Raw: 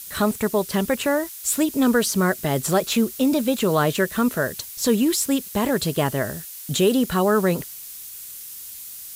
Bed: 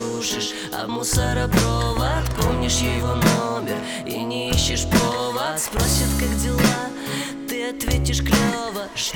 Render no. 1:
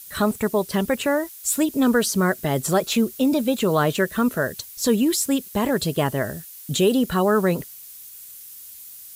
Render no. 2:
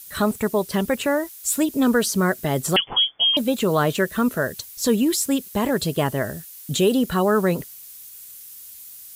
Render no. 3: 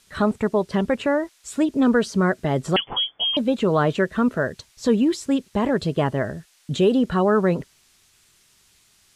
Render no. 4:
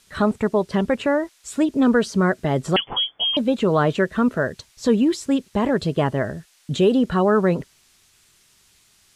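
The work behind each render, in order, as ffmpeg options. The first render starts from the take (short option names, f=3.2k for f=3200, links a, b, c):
-af "afftdn=nr=6:nf=-38"
-filter_complex "[0:a]asettb=1/sr,asplit=3[a][b][c];[a]atrim=end=2.764[d];[b]atrim=start=2.76:end=3.37,asetpts=PTS-STARTPTS,afade=t=in:d=0.004:c=qsin,afade=t=out:st=0.606:d=0.004:c=qsin,lowpass=f=3k:t=q:w=0.5098,lowpass=f=3k:t=q:w=0.6013,lowpass=f=3k:t=q:w=0.9,lowpass=f=3k:t=q:w=2.563,afreqshift=-3500[e];[c]atrim=start=3.366[f];[d][e]acrossfade=d=0.004:c1=hsin:c2=qsin[g];[g][f]acrossfade=d=0.004:c1=qsin:c2=hsin"
-af "lowpass=8.8k,aemphasis=mode=reproduction:type=75fm"
-af "volume=1dB"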